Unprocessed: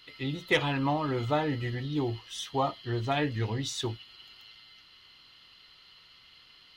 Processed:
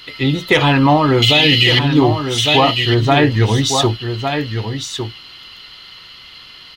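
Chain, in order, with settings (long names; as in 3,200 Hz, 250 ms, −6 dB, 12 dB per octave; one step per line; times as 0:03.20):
0:01.22–0:01.79: high shelf with overshoot 1,900 Hz +13.5 dB, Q 3
on a send: single-tap delay 1,155 ms −8 dB
on the sum: boost into a limiter +18 dB
level −1 dB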